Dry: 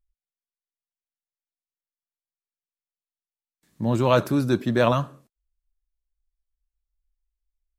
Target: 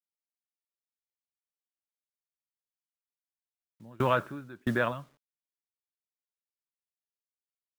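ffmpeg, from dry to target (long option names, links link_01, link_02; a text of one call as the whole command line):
ffmpeg -i in.wav -filter_complex "[0:a]aresample=8000,aresample=44100,asplit=2[link_01][link_02];[link_02]acompressor=threshold=-31dB:ratio=5,volume=-1.5dB[link_03];[link_01][link_03]amix=inputs=2:normalize=0,asettb=1/sr,asplit=3[link_04][link_05][link_06];[link_04]atrim=end=3.914[link_07];[link_05]atrim=start=3.91:end=4.92,asetpts=PTS-STARTPTS,afade=type=in:duration=0.004:curve=qsin,afade=type=out:start_time=1.006:duration=0.004:curve=qsin,equalizer=frequency=1500:width_type=o:width=1:gain=10.5[link_08];[link_06]atrim=start=4.916[link_09];[link_07][link_08]acrossfade=duration=0.004:curve1=hsin:curve2=qsin[link_10];[link_10][link_09]acrossfade=duration=0.004:curve1=qsin:curve2=hsin,acrusher=bits=6:mix=0:aa=0.000001,aeval=exprs='val(0)*pow(10,-28*if(lt(mod(1.5*n/s,1),2*abs(1.5)/1000),1-mod(1.5*n/s,1)/(2*abs(1.5)/1000),(mod(1.5*n/s,1)-2*abs(1.5)/1000)/(1-2*abs(1.5)/1000))/20)':channel_layout=same,volume=-6dB" out.wav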